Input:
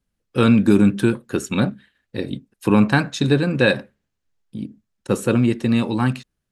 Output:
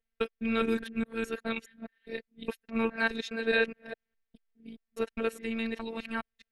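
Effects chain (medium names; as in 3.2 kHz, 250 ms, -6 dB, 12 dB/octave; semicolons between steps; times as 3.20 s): time reversed locally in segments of 207 ms; graphic EQ 125/250/500/1000/2000/8000 Hz -8/-8/+3/-5/+7/-10 dB; robot voice 226 Hz; trim -7.5 dB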